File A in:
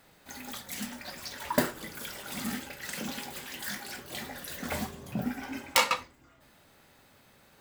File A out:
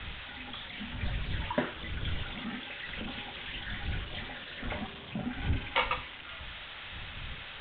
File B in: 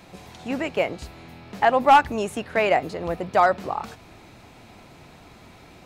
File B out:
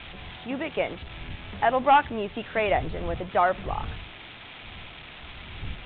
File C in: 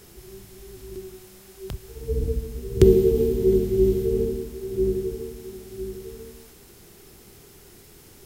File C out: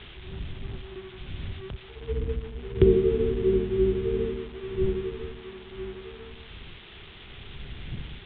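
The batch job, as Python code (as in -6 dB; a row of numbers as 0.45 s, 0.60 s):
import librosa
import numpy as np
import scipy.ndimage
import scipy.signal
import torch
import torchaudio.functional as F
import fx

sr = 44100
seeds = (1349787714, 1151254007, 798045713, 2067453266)

y = x + 0.5 * 10.0 ** (-19.0 / 20.0) * np.diff(np.sign(x), prepend=np.sign(x[:1]))
y = fx.dmg_wind(y, sr, seeds[0], corner_hz=87.0, level_db=-36.0)
y = scipy.signal.sosfilt(scipy.signal.butter(16, 3600.0, 'lowpass', fs=sr, output='sos'), y)
y = y * librosa.db_to_amplitude(-4.0)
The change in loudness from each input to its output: -3.0 LU, -4.0 LU, -5.0 LU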